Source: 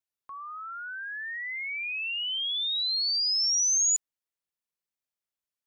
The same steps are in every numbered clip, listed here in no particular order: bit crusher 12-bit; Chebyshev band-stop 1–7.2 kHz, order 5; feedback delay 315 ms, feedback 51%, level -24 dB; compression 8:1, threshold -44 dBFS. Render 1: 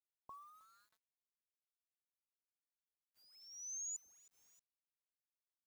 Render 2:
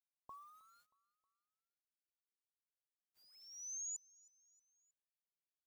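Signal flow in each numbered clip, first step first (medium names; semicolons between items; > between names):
Chebyshev band-stop > compression > feedback delay > bit crusher; Chebyshev band-stop > bit crusher > compression > feedback delay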